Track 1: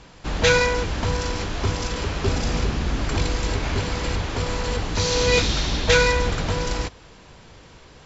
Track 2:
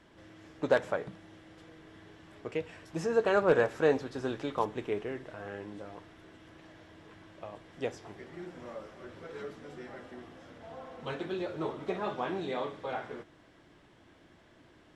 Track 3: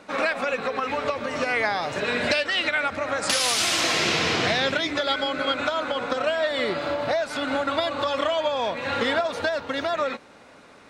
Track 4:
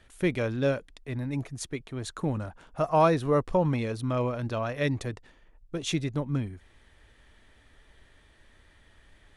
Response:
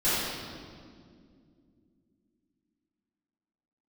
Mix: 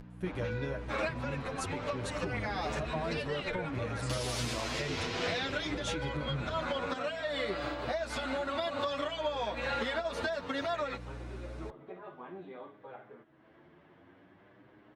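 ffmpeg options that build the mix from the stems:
-filter_complex "[0:a]volume=-10.5dB[a];[1:a]volume=-8dB[b];[2:a]adelay=800,volume=-0.5dB[c];[3:a]agate=range=-21dB:threshold=-45dB:ratio=16:detection=peak,acompressor=threshold=-29dB:ratio=6,volume=-1dB,asplit=2[d][e];[e]apad=whole_len=515691[f];[c][f]sidechaincompress=threshold=-42dB:ratio=8:attack=10:release=263[g];[a][b]amix=inputs=2:normalize=0,highpass=100,lowpass=2.1k,acompressor=threshold=-35dB:ratio=6,volume=0dB[h];[g][d]amix=inputs=2:normalize=0,aeval=exprs='val(0)+0.00891*(sin(2*PI*60*n/s)+sin(2*PI*2*60*n/s)/2+sin(2*PI*3*60*n/s)/3+sin(2*PI*4*60*n/s)/4+sin(2*PI*5*60*n/s)/5)':c=same,acompressor=threshold=-28dB:ratio=6,volume=0dB[i];[h][i]amix=inputs=2:normalize=0,acompressor=mode=upward:threshold=-44dB:ratio=2.5,asplit=2[j][k];[k]adelay=8.4,afreqshift=0.57[l];[j][l]amix=inputs=2:normalize=1"

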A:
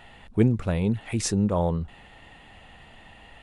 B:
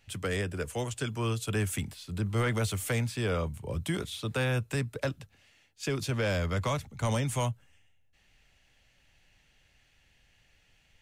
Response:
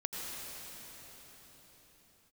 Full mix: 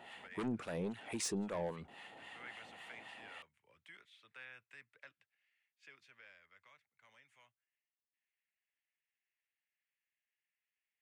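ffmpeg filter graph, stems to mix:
-filter_complex "[0:a]highpass=270,asoftclip=type=tanh:threshold=-24.5dB,acrossover=split=840[a][b];[a]aeval=exprs='val(0)*(1-0.7/2+0.7/2*cos(2*PI*3.7*n/s))':c=same[c];[b]aeval=exprs='val(0)*(1-0.7/2-0.7/2*cos(2*PI*3.7*n/s))':c=same[d];[c][d]amix=inputs=2:normalize=0,volume=0dB[e];[1:a]bandpass=f=2k:t=q:w=2.5:csg=0,volume=-14dB,afade=t=out:st=5.7:d=0.68:silence=0.375837[f];[e][f]amix=inputs=2:normalize=0,alimiter=level_in=6dB:limit=-24dB:level=0:latency=1:release=427,volume=-6dB"

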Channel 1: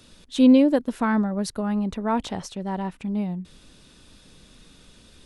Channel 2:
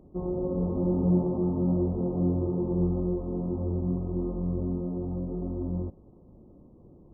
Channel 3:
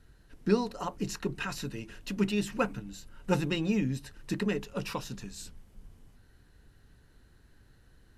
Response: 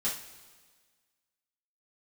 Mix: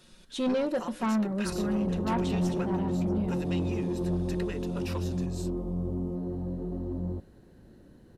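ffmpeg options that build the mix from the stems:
-filter_complex "[0:a]aecho=1:1:5.5:0.69,volume=-7.5dB,asplit=3[a][b][c];[b]volume=-15dB[d];[c]volume=-20.5dB[e];[1:a]adelay=1300,volume=-1dB[f];[2:a]highpass=f=320:p=1,acompressor=threshold=-31dB:ratio=6,volume=-1.5dB[g];[3:a]atrim=start_sample=2205[h];[d][h]afir=irnorm=-1:irlink=0[i];[e]aecho=0:1:638:1[j];[a][f][g][i][j]amix=inputs=5:normalize=0,asoftclip=type=tanh:threshold=-22.5dB"

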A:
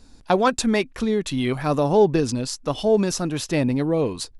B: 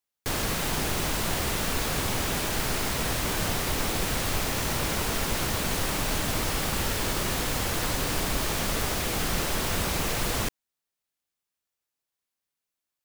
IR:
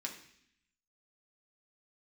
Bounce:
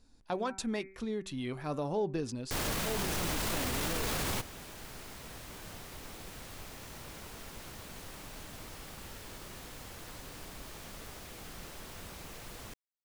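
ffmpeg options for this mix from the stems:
-filter_complex "[0:a]bandreject=f=192.2:t=h:w=4,bandreject=f=384.4:t=h:w=4,bandreject=f=576.6:t=h:w=4,bandreject=f=768.8:t=h:w=4,bandreject=f=961:t=h:w=4,bandreject=f=1.1532k:t=h:w=4,bandreject=f=1.3454k:t=h:w=4,bandreject=f=1.5376k:t=h:w=4,bandreject=f=1.7298k:t=h:w=4,bandreject=f=1.922k:t=h:w=4,bandreject=f=2.1142k:t=h:w=4,bandreject=f=2.3064k:t=h:w=4,bandreject=f=2.4986k:t=h:w=4,volume=-14dB,asplit=2[a][b];[1:a]adelay=2250,volume=0dB[c];[b]apad=whole_len=674350[d];[c][d]sidechaingate=range=-19dB:threshold=-56dB:ratio=16:detection=peak[e];[a][e]amix=inputs=2:normalize=0,alimiter=level_in=0.5dB:limit=-24dB:level=0:latency=1:release=14,volume=-0.5dB"

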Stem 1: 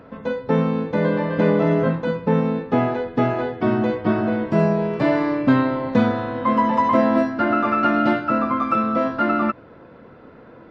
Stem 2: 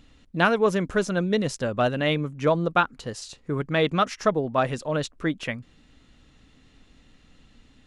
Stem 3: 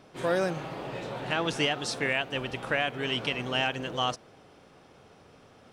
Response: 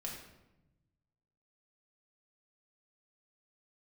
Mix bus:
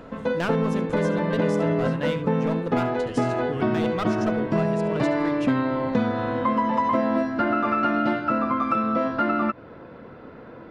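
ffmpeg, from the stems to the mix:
-filter_complex "[0:a]volume=2dB[a];[1:a]acontrast=87,aeval=exprs='clip(val(0),-1,0.168)':c=same,volume=-10dB,asplit=2[b][c];[c]volume=-15dB[d];[2:a]alimiter=limit=-20.5dB:level=0:latency=1,volume=-16.5dB[e];[d]aecho=0:1:71:1[f];[a][b][e][f]amix=inputs=4:normalize=0,acompressor=threshold=-21dB:ratio=3"

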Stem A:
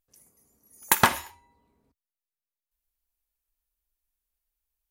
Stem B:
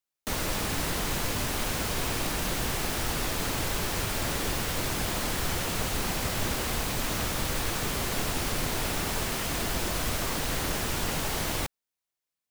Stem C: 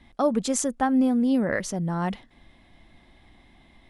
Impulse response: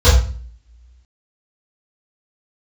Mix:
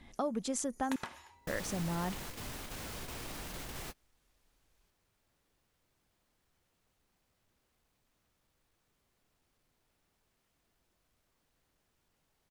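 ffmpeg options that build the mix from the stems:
-filter_complex "[0:a]acompressor=mode=upward:threshold=-53dB:ratio=2.5,volume=11dB,asoftclip=hard,volume=-11dB,lowpass=7k,volume=-4dB[a];[1:a]asoftclip=type=tanh:threshold=-23.5dB,adelay=1050,volume=-10.5dB[b];[2:a]acompressor=threshold=-34dB:ratio=2.5,volume=-2dB,asplit=3[c][d][e];[c]atrim=end=0.96,asetpts=PTS-STARTPTS,afade=t=out:st=0.956:d=0.004:c=hsin[f];[d]atrim=start=0.96:end=1.47,asetpts=PTS-STARTPTS,volume=0[g];[e]atrim=start=1.47,asetpts=PTS-STARTPTS,afade=t=in:d=0.004:c=hsin[h];[f][g][h]concat=n=3:v=0:a=1,asplit=2[i][j];[j]apad=whole_len=597702[k];[b][k]sidechaingate=range=-36dB:threshold=-57dB:ratio=16:detection=peak[l];[a][l]amix=inputs=2:normalize=0,acompressor=threshold=-39dB:ratio=20,volume=0dB[m];[i][m]amix=inputs=2:normalize=0"

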